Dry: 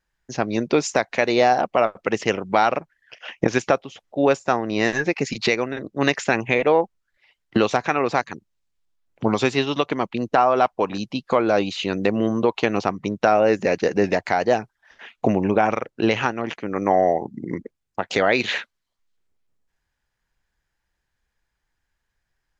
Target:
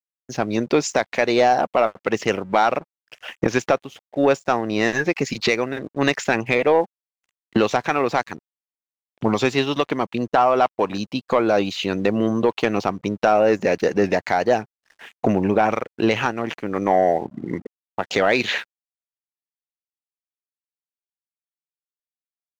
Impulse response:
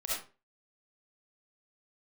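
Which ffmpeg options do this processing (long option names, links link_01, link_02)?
-af "acontrast=45,aeval=exprs='sgn(val(0))*max(abs(val(0))-0.00531,0)':channel_layout=same,volume=-4dB"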